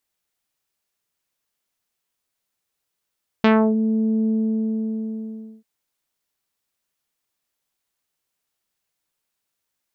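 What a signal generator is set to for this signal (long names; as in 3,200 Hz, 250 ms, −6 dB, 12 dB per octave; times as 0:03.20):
subtractive voice saw A3 24 dB per octave, low-pass 360 Hz, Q 0.87, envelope 3.5 octaves, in 0.31 s, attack 1.8 ms, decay 0.29 s, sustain −6 dB, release 1.35 s, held 0.84 s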